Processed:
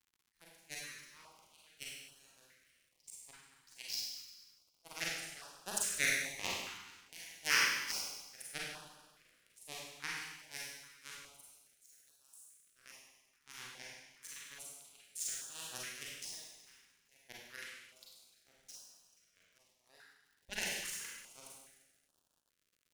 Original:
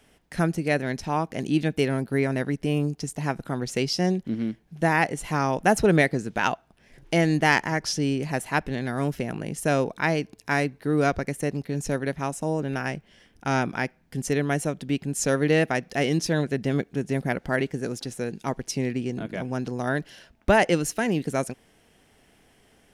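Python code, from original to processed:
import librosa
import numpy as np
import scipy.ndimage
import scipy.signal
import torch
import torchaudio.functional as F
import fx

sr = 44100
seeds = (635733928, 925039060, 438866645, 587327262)

y = fx.hpss_only(x, sr, part='percussive')
y = fx.echo_feedback(y, sr, ms=433, feedback_pct=45, wet_db=-11.5)
y = fx.transient(y, sr, attack_db=-6, sustain_db=2)
y = fx.tone_stack(y, sr, knobs='10-0-10')
y = fx.cheby_harmonics(y, sr, harmonics=(7,), levels_db=(-17,), full_scale_db=-11.5)
y = fx.pre_emphasis(y, sr, coefficient=0.9, at=(11.28, 12.74))
y = fx.rev_schroeder(y, sr, rt60_s=1.1, comb_ms=33, drr_db=-5.0)
y = fx.dmg_crackle(y, sr, seeds[0], per_s=170.0, level_db=-57.0)
y = fx.filter_held_notch(y, sr, hz=2.4, low_hz=600.0, high_hz=2100.0)
y = y * librosa.db_to_amplitude(-2.0)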